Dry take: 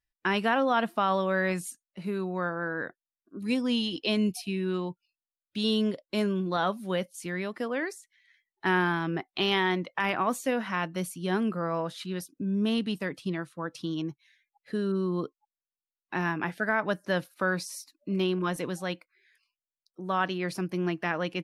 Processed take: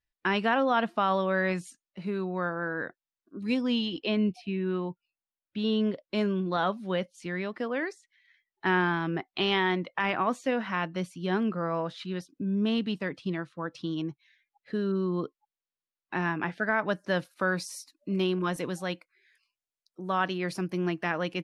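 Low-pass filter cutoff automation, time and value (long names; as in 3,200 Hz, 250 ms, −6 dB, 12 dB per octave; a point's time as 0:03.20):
0:03.55 5,600 Hz
0:04.20 2,500 Hz
0:05.70 2,500 Hz
0:06.18 4,700 Hz
0:16.47 4,700 Hz
0:17.55 11,000 Hz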